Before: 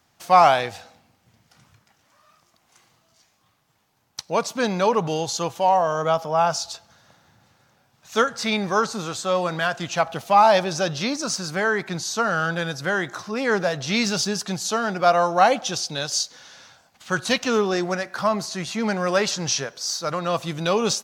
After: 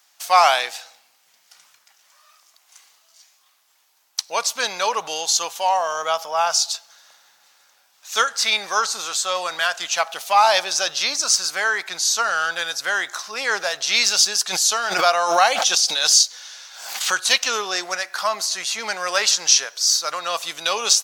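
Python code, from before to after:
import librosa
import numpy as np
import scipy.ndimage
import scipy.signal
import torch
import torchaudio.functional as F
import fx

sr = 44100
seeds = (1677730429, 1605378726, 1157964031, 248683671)

y = scipy.signal.sosfilt(scipy.signal.butter(2, 710.0, 'highpass', fs=sr, output='sos'), x)
y = fx.high_shelf(y, sr, hz=2500.0, db=11.5)
y = fx.pre_swell(y, sr, db_per_s=58.0, at=(14.5, 17.22))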